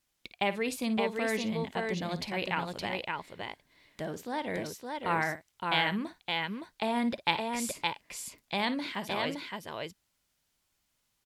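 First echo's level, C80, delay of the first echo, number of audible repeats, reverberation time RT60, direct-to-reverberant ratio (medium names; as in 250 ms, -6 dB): -14.0 dB, no reverb, 55 ms, 2, no reverb, no reverb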